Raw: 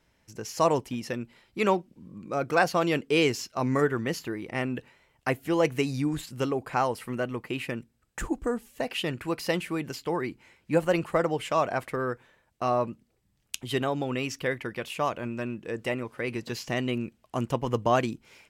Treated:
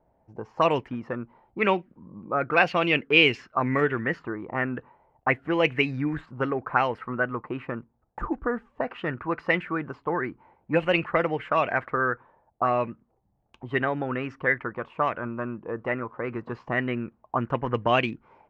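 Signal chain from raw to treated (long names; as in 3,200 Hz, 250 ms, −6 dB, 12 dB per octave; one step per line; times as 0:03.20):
envelope-controlled low-pass 740–2,700 Hz up, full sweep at −20.5 dBFS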